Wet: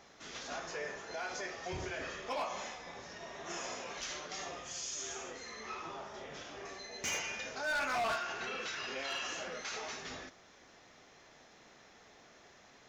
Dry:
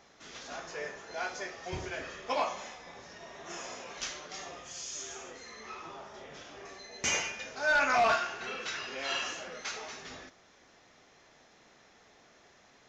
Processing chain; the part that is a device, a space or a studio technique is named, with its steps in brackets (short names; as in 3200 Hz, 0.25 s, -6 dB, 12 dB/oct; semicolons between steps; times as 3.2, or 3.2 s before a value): clipper into limiter (hard clip -25.5 dBFS, distortion -14 dB; limiter -32 dBFS, peak gain reduction 6.5 dB); gain +1 dB